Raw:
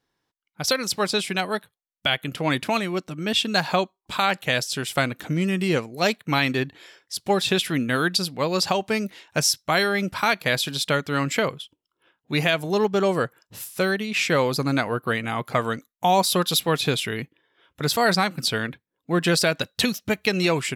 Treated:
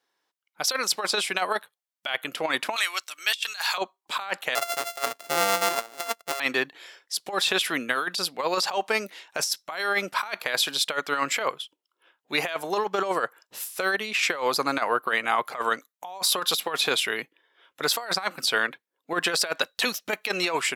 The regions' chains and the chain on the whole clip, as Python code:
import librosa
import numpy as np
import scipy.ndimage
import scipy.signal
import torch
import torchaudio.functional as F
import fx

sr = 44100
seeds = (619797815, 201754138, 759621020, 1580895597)

y = fx.chain(x, sr, fx.highpass(hz=1300.0, slope=12),
    fx.high_shelf(hz=2800.0, db=11.5), at=(2.76, 3.78))
y = fx.chain(y, sr, fx.sample_sort(block=64),
    fx.high_shelf(hz=3700.0, db=6.0),
    fx.upward_expand(threshold_db=-35.0, expansion=1.5), at=(4.55, 6.4))
y = scipy.signal.sosfilt(scipy.signal.butter(2, 470.0, 'highpass', fs=sr, output='sos'), y)
y = fx.dynamic_eq(y, sr, hz=1100.0, q=1.0, threshold_db=-36.0, ratio=4.0, max_db=6)
y = fx.over_compress(y, sr, threshold_db=-23.0, ratio=-0.5)
y = F.gain(torch.from_numpy(y), -1.5).numpy()